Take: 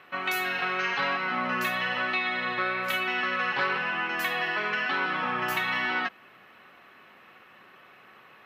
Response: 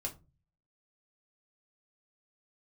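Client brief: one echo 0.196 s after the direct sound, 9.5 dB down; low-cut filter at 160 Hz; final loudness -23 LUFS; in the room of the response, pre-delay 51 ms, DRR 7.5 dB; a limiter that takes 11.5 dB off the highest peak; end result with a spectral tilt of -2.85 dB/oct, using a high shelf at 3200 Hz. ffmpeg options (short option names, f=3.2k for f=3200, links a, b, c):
-filter_complex "[0:a]highpass=160,highshelf=f=3.2k:g=7.5,alimiter=limit=-22.5dB:level=0:latency=1,aecho=1:1:196:0.335,asplit=2[a][b];[1:a]atrim=start_sample=2205,adelay=51[c];[b][c]afir=irnorm=-1:irlink=0,volume=-7.5dB[d];[a][d]amix=inputs=2:normalize=0,volume=5.5dB"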